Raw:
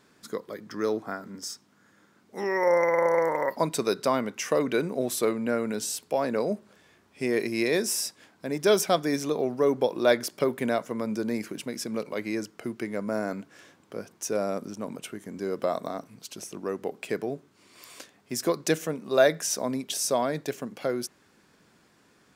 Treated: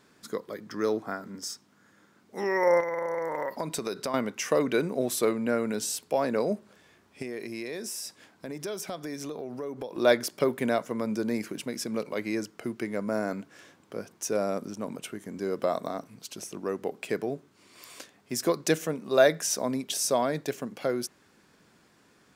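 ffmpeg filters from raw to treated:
-filter_complex "[0:a]asettb=1/sr,asplit=3[a][b][c];[a]atrim=end=2.804[d];[b]atrim=start=2.8:end=4.14,asetpts=PTS-STARTPTS,afade=t=in:d=0.004:c=qsin,afade=t=out:st=1.336:d=0.004:c=qsin,acompressor=threshold=-27dB:ratio=6:attack=3.2:release=140:knee=1:detection=peak[e];[c]atrim=start=4.136[f];[d][e]acrossfade=d=0.004:c1=hsin:c2=qsin[g];[g][f]acrossfade=d=0.004:c1=qsin:c2=hsin,asettb=1/sr,asplit=3[h][i][j];[h]atrim=end=7.224[k];[i]atrim=start=7.22:end=9.97,asetpts=PTS-STARTPTS,afade=t=in:d=0.004:c=qsin,afade=t=out:st=2.746:d=0.004:c=qsin,acompressor=threshold=-34dB:ratio=4:attack=3.2:release=140:knee=1:detection=peak[l];[j]atrim=start=9.966[m];[k][l]acrossfade=d=0.004:c1=hsin:c2=qsin[n];[n][m]acrossfade=d=0.004:c1=qsin:c2=hsin"

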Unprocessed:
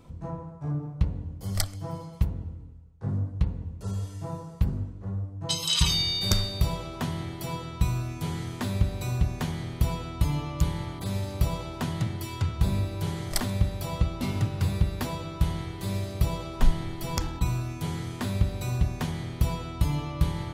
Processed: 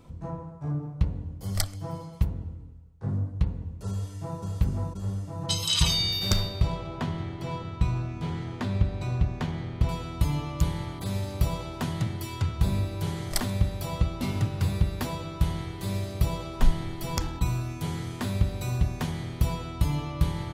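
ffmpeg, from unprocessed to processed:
-filter_complex "[0:a]asplit=2[a][b];[b]afade=t=in:st=3.89:d=0.01,afade=t=out:st=4.4:d=0.01,aecho=0:1:530|1060|1590|2120|2650|3180|3710|4240|4770|5300|5830|6360:0.794328|0.675179|0.573902|0.487817|0.414644|0.352448|0.299581|0.254643|0.216447|0.18398|0.156383|0.132925[c];[a][c]amix=inputs=2:normalize=0,asettb=1/sr,asplit=3[d][e][f];[d]atrim=end=6.124[g];[e]atrim=start=6.12:end=9.89,asetpts=PTS-STARTPTS,afade=t=in:d=0.004:c=qsin,afade=t=out:st=3.766:d=0.004:c=qsin,adynamicsmooth=sensitivity=5.5:basefreq=3.2k[h];[f]atrim=start=9.886[i];[g][h]acrossfade=d=0.004:c1=hsin:c2=qsin[j];[j][i]acrossfade=d=0.004:c1=qsin:c2=hsin"

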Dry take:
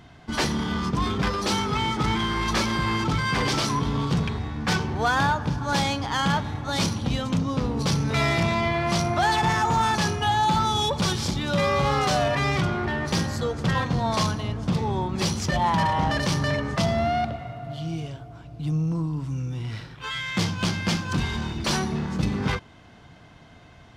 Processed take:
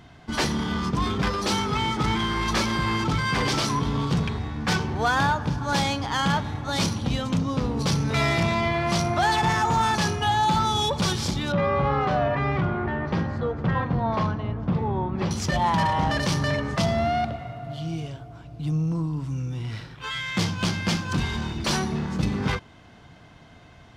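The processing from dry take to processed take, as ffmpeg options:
-filter_complex "[0:a]asettb=1/sr,asplit=3[a][b][c];[a]atrim=end=11.524[d];[b]atrim=start=11.52:end=15.31,asetpts=PTS-STARTPTS,afade=t=in:d=0.004:c=qsin,afade=t=out:st=3.786:d=0.004:c=qsin,lowpass=1.8k[e];[c]atrim=start=15.306[f];[d][e]acrossfade=d=0.004:c1=hsin:c2=qsin[g];[g][f]acrossfade=d=0.004:c1=qsin:c2=hsin"

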